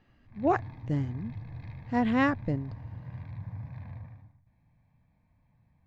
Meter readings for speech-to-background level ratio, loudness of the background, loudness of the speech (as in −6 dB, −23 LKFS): 12.5 dB, −42.5 LKFS, −30.0 LKFS